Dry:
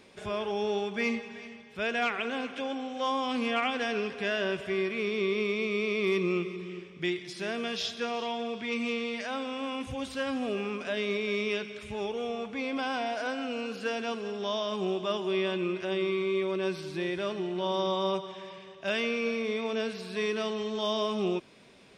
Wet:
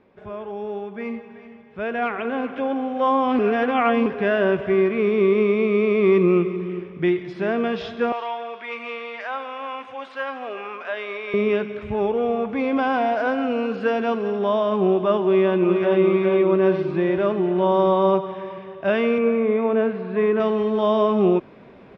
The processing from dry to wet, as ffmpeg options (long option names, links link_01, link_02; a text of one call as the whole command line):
ffmpeg -i in.wav -filter_complex "[0:a]asettb=1/sr,asplit=3[link_01][link_02][link_03];[link_01]atrim=end=8.124[link_04];[link_02]atrim=start=8.12:end=11.34,asetpts=PTS-STARTPTS,afade=type=in:duration=0.004:curve=qsin,afade=type=out:start_time=3.216:duration=0.004:curve=qsin,highpass=880[link_05];[link_03]atrim=start=11.336[link_06];[link_04][link_05]acrossfade=duration=0.004:curve1=hsin:curve2=qsin[link_07];[link_07][link_06]acrossfade=duration=0.004:curve1=qsin:curve2=hsin,asettb=1/sr,asplit=3[link_08][link_09][link_10];[link_08]atrim=end=12.494[link_11];[link_09]atrim=start=12.49:end=14.39,asetpts=PTS-STARTPTS,afade=type=in:duration=0.004:curve=qsin,afade=type=out:start_time=1.896:duration=0.004:curve=qsin,aemphasis=mode=production:type=cd[link_12];[link_10]atrim=start=14.386[link_13];[link_11][link_12]acrossfade=duration=0.004:curve1=hsin:curve2=qsin[link_14];[link_14][link_13]acrossfade=duration=0.004:curve1=qsin:curve2=hsin,asplit=2[link_15][link_16];[link_16]afade=type=in:start_time=15.21:duration=0.01,afade=type=out:start_time=16:duration=0.01,aecho=0:1:410|820|1230|1640|2050|2460|2870|3280|3690:0.595662|0.357397|0.214438|0.128663|0.0771978|0.0463187|0.0277912|0.0166747|0.0100048[link_17];[link_15][link_17]amix=inputs=2:normalize=0,asettb=1/sr,asplit=3[link_18][link_19][link_20];[link_18]atrim=end=19.184[link_21];[link_19]atrim=start=19.18:end=20.4,asetpts=PTS-STARTPTS,afade=type=in:duration=0.004:curve=qsin,afade=type=out:start_time=1.216:duration=0.004:curve=qsin,highpass=110,lowpass=2400[link_22];[link_20]atrim=start=20.396[link_23];[link_21][link_22]acrossfade=duration=0.004:curve1=hsin:curve2=qsin[link_24];[link_24][link_23]acrossfade=duration=0.004:curve1=qsin:curve2=hsin,asplit=3[link_25][link_26][link_27];[link_25]atrim=end=3.392[link_28];[link_26]atrim=start=3.388:end=4.062,asetpts=PTS-STARTPTS,areverse[link_29];[link_27]atrim=start=4.058[link_30];[link_28][link_29]acrossfade=duration=0.004:curve1=hsin:curve2=hsin[link_31];[link_31][link_30]acrossfade=duration=0.004:curve1=hsin:curve2=hsin,lowpass=1400,dynaudnorm=framelen=330:gausssize=13:maxgain=12dB" out.wav